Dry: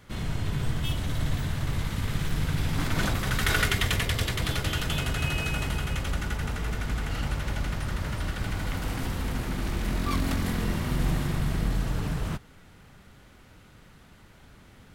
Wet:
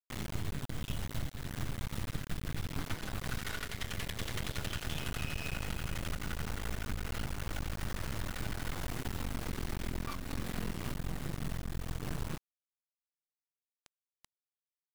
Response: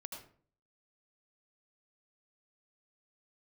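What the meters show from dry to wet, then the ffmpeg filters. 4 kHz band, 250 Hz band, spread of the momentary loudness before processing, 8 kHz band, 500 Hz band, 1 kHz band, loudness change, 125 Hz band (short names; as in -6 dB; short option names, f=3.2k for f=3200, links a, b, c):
-10.5 dB, -10.0 dB, 6 LU, -8.0 dB, -9.0 dB, -10.0 dB, -10.5 dB, -11.0 dB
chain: -af "acrusher=bits=4:dc=4:mix=0:aa=0.000001,acompressor=threshold=-30dB:ratio=6,aeval=exprs='max(val(0),0)':c=same,volume=-1dB"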